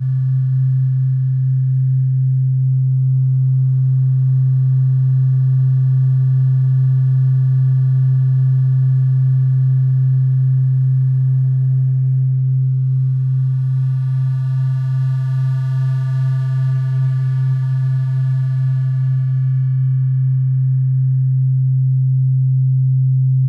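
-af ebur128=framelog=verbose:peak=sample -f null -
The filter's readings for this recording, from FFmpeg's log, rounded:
Integrated loudness:
  I:         -15.7 LUFS
  Threshold: -25.7 LUFS
Loudness range:
  LRA:         3.0 LU
  Threshold: -35.7 LUFS
  LRA low:   -17.4 LUFS
  LRA high:  -14.4 LUFS
Sample peak:
  Peak:       -9.5 dBFS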